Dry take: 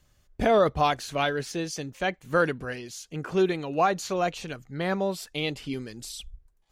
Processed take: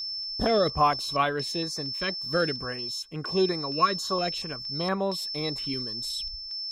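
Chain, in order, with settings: whistle 5.3 kHz -30 dBFS; small resonant body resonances 1.1/3.9 kHz, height 14 dB, ringing for 35 ms; step-sequenced notch 4.3 Hz 780–5100 Hz; trim -1 dB

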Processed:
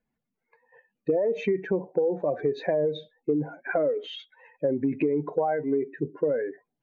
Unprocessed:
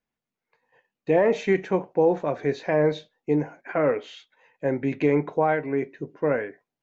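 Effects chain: spectral contrast enhancement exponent 1.9; compression 10:1, threshold -27 dBFS, peak gain reduction 11.5 dB; trim +5.5 dB

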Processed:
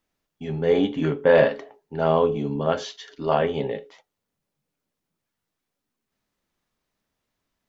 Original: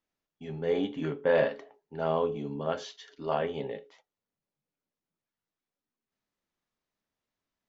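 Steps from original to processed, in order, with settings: bass shelf 130 Hz +5 dB; trim +8 dB

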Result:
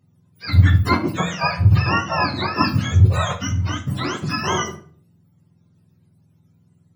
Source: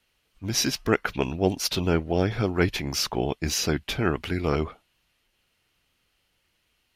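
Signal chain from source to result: spectrum inverted on a logarithmic axis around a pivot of 680 Hz; 1.76–2.55 s: distance through air 84 m; 3.40–4.20 s: compression 3:1, threshold -28 dBFS, peak gain reduction 9.5 dB; simulated room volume 46 m³, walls mixed, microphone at 0.36 m; trim +5.5 dB

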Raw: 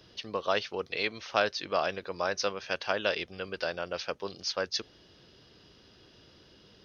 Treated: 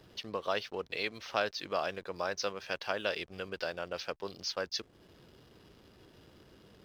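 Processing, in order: in parallel at +2 dB: compression 6:1, threshold -42 dBFS, peak gain reduction 19.5 dB; on the sum: hysteresis with a dead band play -46.5 dBFS; trim -6 dB

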